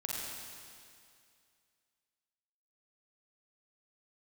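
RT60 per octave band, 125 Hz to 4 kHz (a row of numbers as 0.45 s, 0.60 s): 2.2 s, 2.3 s, 2.3 s, 2.3 s, 2.3 s, 2.3 s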